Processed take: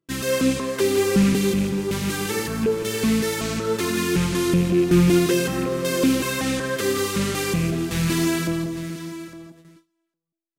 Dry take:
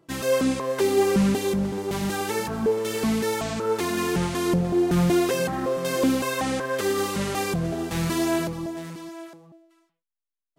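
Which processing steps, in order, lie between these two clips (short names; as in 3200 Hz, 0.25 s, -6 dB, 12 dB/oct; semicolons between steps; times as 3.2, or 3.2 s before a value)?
rattling part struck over -26 dBFS, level -29 dBFS; bell 740 Hz -11.5 dB 0.98 oct; tapped delay 90/164/170/806 ms -16.5/-11/-12/-18.5 dB; gate with hold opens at -44 dBFS; gain +4 dB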